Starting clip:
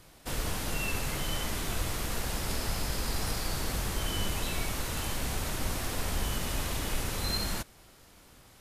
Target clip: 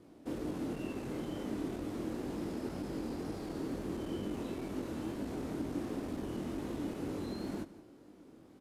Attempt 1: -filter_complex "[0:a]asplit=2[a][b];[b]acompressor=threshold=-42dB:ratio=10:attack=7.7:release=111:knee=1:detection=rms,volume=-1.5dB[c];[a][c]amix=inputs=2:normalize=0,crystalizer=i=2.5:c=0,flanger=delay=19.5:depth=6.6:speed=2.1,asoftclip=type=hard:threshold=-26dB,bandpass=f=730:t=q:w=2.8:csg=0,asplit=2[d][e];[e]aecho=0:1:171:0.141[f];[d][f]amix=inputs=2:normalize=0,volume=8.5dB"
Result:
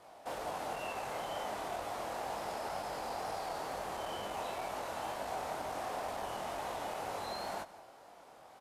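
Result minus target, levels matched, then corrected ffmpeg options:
250 Hz band -14.5 dB; compressor: peak gain reduction +10.5 dB
-filter_complex "[0:a]asplit=2[a][b];[b]acompressor=threshold=-30.5dB:ratio=10:attack=7.7:release=111:knee=1:detection=rms,volume=-1.5dB[c];[a][c]amix=inputs=2:normalize=0,crystalizer=i=2.5:c=0,flanger=delay=19.5:depth=6.6:speed=2.1,asoftclip=type=hard:threshold=-26dB,bandpass=f=300:t=q:w=2.8:csg=0,asplit=2[d][e];[e]aecho=0:1:171:0.141[f];[d][f]amix=inputs=2:normalize=0,volume=8.5dB"

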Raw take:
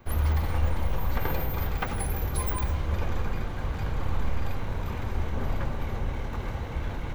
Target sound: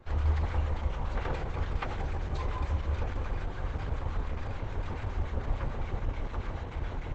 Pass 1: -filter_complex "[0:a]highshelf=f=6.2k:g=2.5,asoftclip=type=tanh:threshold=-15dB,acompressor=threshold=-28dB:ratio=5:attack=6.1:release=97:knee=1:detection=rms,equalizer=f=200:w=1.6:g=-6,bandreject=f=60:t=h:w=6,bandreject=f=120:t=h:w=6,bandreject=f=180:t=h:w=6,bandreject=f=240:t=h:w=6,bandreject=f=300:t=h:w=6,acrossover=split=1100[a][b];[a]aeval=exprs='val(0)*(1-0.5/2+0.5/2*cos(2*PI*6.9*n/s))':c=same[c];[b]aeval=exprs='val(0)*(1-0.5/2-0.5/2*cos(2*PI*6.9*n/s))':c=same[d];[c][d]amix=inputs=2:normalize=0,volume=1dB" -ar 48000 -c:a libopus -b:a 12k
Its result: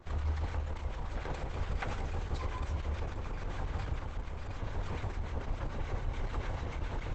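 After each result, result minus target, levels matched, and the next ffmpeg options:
compressor: peak gain reduction +8.5 dB; 8000 Hz band +6.5 dB
-filter_complex "[0:a]highshelf=f=6.2k:g=2.5,asoftclip=type=tanh:threshold=-15dB,equalizer=f=200:w=1.6:g=-6,bandreject=f=60:t=h:w=6,bandreject=f=120:t=h:w=6,bandreject=f=180:t=h:w=6,bandreject=f=240:t=h:w=6,bandreject=f=300:t=h:w=6,acrossover=split=1100[a][b];[a]aeval=exprs='val(0)*(1-0.5/2+0.5/2*cos(2*PI*6.9*n/s))':c=same[c];[b]aeval=exprs='val(0)*(1-0.5/2-0.5/2*cos(2*PI*6.9*n/s))':c=same[d];[c][d]amix=inputs=2:normalize=0,volume=1dB" -ar 48000 -c:a libopus -b:a 12k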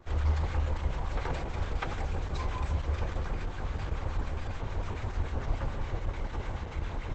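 8000 Hz band +5.5 dB
-filter_complex "[0:a]highshelf=f=6.2k:g=-9,asoftclip=type=tanh:threshold=-15dB,equalizer=f=200:w=1.6:g=-6,bandreject=f=60:t=h:w=6,bandreject=f=120:t=h:w=6,bandreject=f=180:t=h:w=6,bandreject=f=240:t=h:w=6,bandreject=f=300:t=h:w=6,acrossover=split=1100[a][b];[a]aeval=exprs='val(0)*(1-0.5/2+0.5/2*cos(2*PI*6.9*n/s))':c=same[c];[b]aeval=exprs='val(0)*(1-0.5/2-0.5/2*cos(2*PI*6.9*n/s))':c=same[d];[c][d]amix=inputs=2:normalize=0,volume=1dB" -ar 48000 -c:a libopus -b:a 12k

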